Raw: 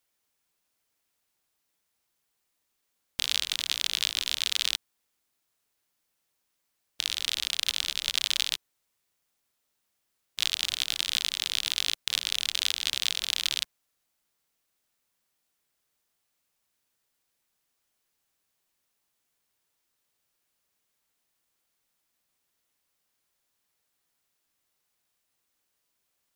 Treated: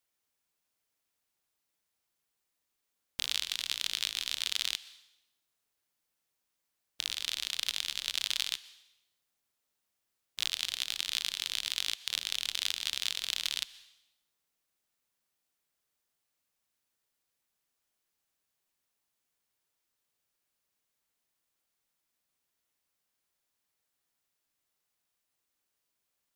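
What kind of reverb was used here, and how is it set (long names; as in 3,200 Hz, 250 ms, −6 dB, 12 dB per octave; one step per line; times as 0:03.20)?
dense smooth reverb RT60 0.86 s, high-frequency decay 1×, pre-delay 110 ms, DRR 18 dB
level −5 dB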